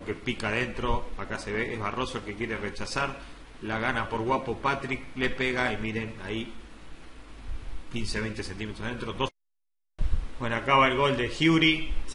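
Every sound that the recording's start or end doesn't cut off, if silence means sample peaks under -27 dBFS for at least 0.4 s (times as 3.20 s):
3.65–6.43 s
7.50–9.27 s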